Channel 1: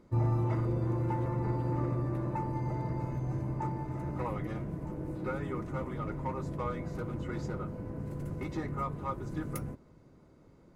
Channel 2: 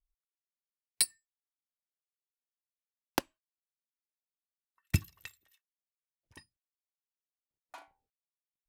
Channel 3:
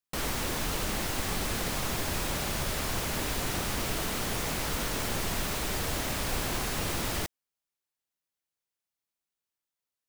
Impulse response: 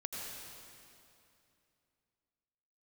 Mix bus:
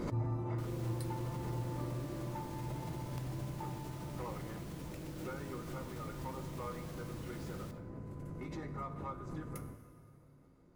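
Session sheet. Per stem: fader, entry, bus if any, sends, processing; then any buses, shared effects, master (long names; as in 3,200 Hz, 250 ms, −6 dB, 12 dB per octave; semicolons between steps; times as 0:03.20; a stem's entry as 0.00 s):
+1.0 dB, 0.00 s, send −8.5 dB, flanger 1.4 Hz, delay 5.1 ms, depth 7 ms, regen +83%
−12.5 dB, 0.00 s, no send, downward compressor, threshold −31 dBFS, peak gain reduction 10.5 dB
−17.5 dB, 0.45 s, no send, no processing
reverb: on, RT60 2.7 s, pre-delay 76 ms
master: tuned comb filter 53 Hz, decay 0.56 s, harmonics odd, mix 60%; background raised ahead of every attack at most 43 dB per second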